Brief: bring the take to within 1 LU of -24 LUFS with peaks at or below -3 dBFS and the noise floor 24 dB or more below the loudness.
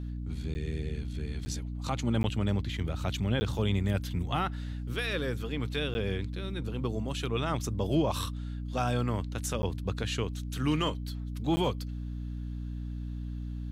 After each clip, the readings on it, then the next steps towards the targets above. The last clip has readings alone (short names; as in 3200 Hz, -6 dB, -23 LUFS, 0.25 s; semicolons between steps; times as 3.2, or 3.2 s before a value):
dropouts 7; longest dropout 10 ms; hum 60 Hz; harmonics up to 300 Hz; hum level -34 dBFS; loudness -32.5 LUFS; peak -15.5 dBFS; loudness target -24.0 LUFS
-> interpolate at 0.54/1.45/2.23/3.4/5.94/9.62/11.56, 10 ms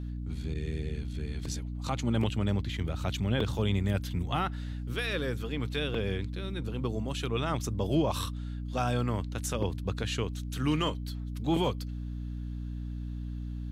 dropouts 0; hum 60 Hz; harmonics up to 300 Hz; hum level -34 dBFS
-> de-hum 60 Hz, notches 5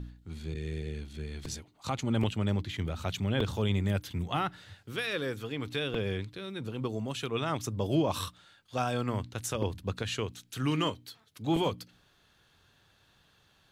hum none; loudness -33.0 LUFS; peak -16.0 dBFS; loudness target -24.0 LUFS
-> gain +9 dB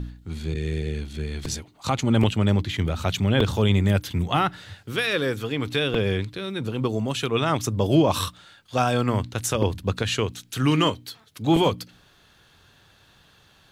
loudness -24.0 LUFS; peak -7.0 dBFS; noise floor -57 dBFS